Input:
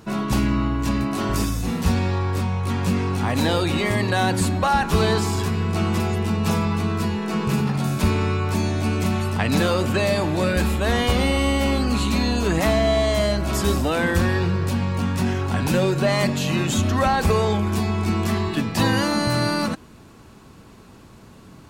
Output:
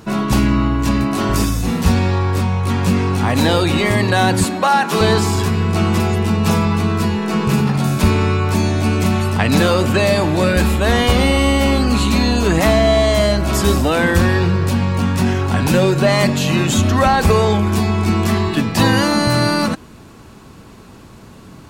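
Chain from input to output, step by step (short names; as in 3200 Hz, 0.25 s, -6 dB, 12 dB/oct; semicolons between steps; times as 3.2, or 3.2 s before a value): 4.44–5.01 Bessel high-pass 230 Hz, order 8; gain +6 dB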